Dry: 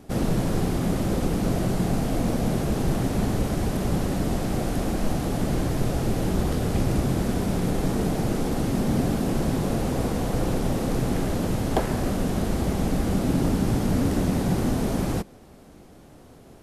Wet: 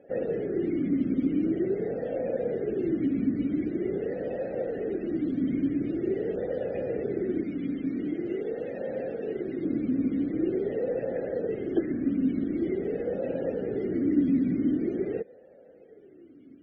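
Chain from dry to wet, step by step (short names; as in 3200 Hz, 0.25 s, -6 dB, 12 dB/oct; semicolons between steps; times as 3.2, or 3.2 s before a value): 7.43–9.63 low shelf 480 Hz -5.5 dB; loudest bins only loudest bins 64; vowel sweep e-i 0.45 Hz; gain +8.5 dB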